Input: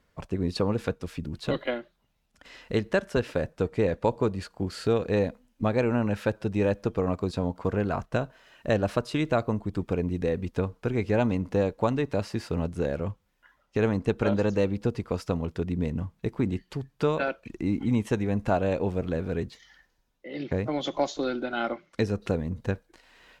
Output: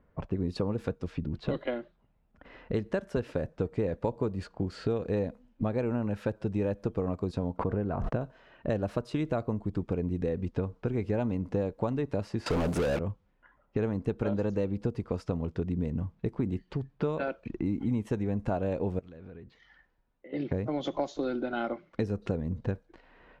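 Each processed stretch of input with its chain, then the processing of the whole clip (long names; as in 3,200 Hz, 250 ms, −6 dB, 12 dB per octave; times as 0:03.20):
0:07.57–0:08.21: low-pass filter 1,400 Hz 6 dB per octave + noise gate −54 dBFS, range −36 dB + background raised ahead of every attack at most 38 dB per second
0:12.46–0:12.99: mu-law and A-law mismatch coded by A + mid-hump overdrive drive 37 dB, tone 7,900 Hz, clips at −16 dBFS
0:18.99–0:20.33: tilt shelving filter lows −5.5 dB, about 1,500 Hz + downward compressor 10 to 1, threshold −46 dBFS
whole clip: low-pass that shuts in the quiet parts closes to 1,800 Hz, open at −24 dBFS; tilt shelving filter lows +4.5 dB, about 1,200 Hz; downward compressor 2.5 to 1, threshold −30 dBFS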